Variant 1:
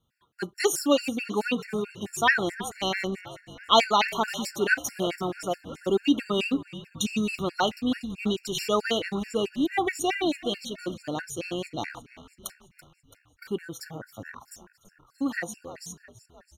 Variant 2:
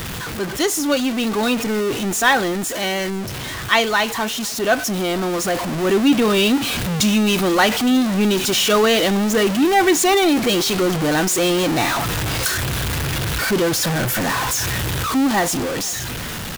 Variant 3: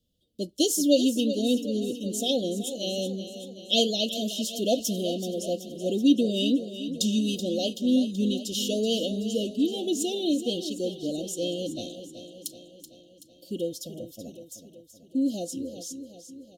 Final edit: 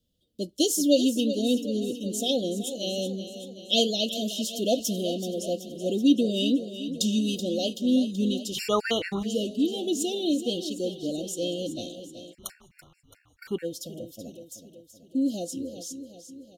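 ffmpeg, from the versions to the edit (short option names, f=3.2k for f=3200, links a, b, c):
-filter_complex "[0:a]asplit=2[a][b];[2:a]asplit=3[c][d][e];[c]atrim=end=8.6,asetpts=PTS-STARTPTS[f];[a]atrim=start=8.54:end=9.27,asetpts=PTS-STARTPTS[g];[d]atrim=start=9.21:end=12.35,asetpts=PTS-STARTPTS[h];[b]atrim=start=12.31:end=13.66,asetpts=PTS-STARTPTS[i];[e]atrim=start=13.62,asetpts=PTS-STARTPTS[j];[f][g]acrossfade=d=0.06:c1=tri:c2=tri[k];[k][h]acrossfade=d=0.06:c1=tri:c2=tri[l];[l][i]acrossfade=d=0.04:c1=tri:c2=tri[m];[m][j]acrossfade=d=0.04:c1=tri:c2=tri"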